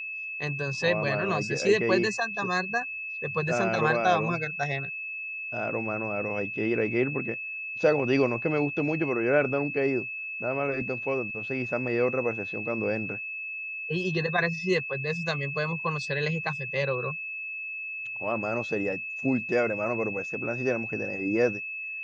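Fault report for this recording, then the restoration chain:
whistle 2,600 Hz −33 dBFS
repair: notch filter 2,600 Hz, Q 30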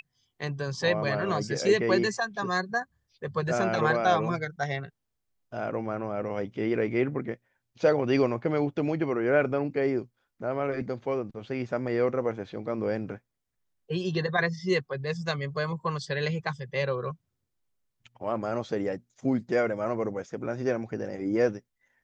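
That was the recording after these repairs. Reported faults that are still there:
none of them is left

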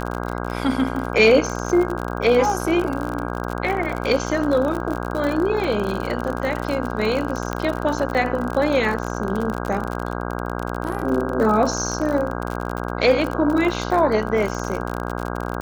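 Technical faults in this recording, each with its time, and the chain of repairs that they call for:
mains buzz 60 Hz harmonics 27 −27 dBFS
surface crackle 51 per second −24 dBFS
0:07.53: click −11 dBFS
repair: click removal
hum removal 60 Hz, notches 27

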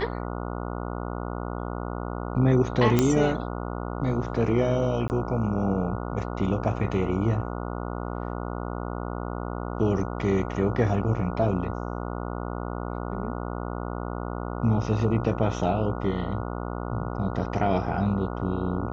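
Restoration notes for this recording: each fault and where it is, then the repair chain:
mains buzz 60 Hz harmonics 24 −32 dBFS
0:02.99: click −7 dBFS
0:05.08–0:05.10: drop-out 19 ms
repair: click removal
hum removal 60 Hz, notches 24
repair the gap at 0:05.08, 19 ms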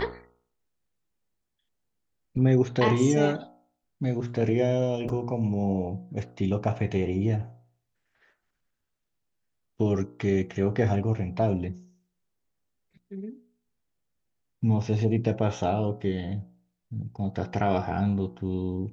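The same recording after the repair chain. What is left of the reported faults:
none of them is left

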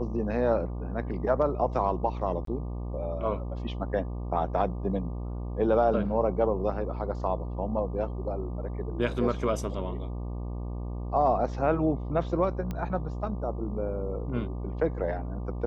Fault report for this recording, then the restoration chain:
mains buzz 60 Hz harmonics 20 −34 dBFS
0:02.45–0:02.47: drop-out 23 ms
0:12.71: click −21 dBFS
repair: click removal
hum removal 60 Hz, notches 20
repair the gap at 0:02.45, 23 ms

